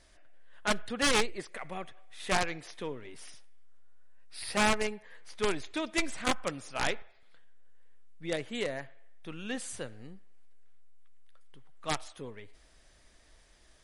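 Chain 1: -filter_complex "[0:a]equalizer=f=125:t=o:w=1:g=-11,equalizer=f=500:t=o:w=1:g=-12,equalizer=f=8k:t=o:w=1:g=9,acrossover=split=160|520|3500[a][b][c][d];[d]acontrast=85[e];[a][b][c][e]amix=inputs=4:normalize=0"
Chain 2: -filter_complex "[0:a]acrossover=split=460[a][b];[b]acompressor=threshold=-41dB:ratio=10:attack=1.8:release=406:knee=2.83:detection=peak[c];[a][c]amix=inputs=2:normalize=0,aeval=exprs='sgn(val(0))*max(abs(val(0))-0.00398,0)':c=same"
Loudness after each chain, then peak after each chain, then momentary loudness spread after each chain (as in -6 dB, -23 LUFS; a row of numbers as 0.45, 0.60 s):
-27.5, -42.0 LUFS; -5.5, -21.5 dBFS; 22, 17 LU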